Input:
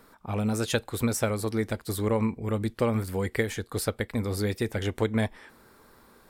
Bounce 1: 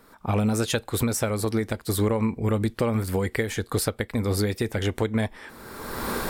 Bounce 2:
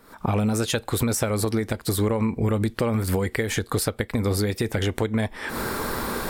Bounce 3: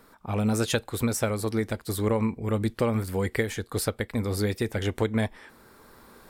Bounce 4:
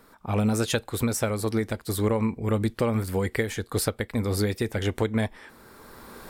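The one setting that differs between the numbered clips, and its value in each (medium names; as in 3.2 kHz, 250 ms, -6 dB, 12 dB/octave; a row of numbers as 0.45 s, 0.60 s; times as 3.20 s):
recorder AGC, rising by: 32 dB/s, 80 dB/s, 5.1 dB/s, 13 dB/s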